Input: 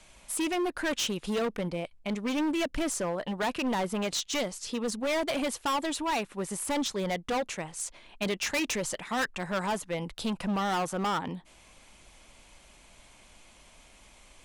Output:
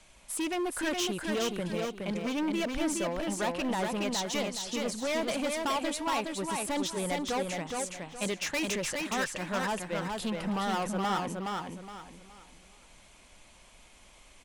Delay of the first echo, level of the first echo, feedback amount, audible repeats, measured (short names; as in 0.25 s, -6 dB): 0.418 s, -3.5 dB, 31%, 4